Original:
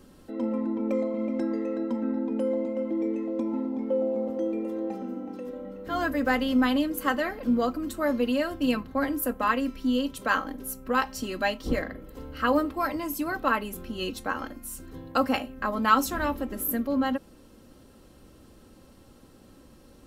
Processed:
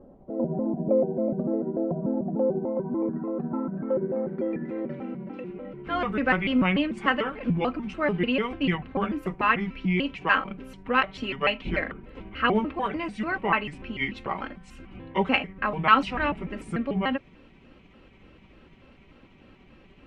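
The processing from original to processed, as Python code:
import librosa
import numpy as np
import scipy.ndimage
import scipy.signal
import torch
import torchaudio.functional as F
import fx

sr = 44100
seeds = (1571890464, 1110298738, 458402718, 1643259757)

y = fx.pitch_trill(x, sr, semitones=-5.5, every_ms=147)
y = fx.filter_sweep_lowpass(y, sr, from_hz=660.0, to_hz=2500.0, start_s=2.05, end_s=5.12, q=3.6)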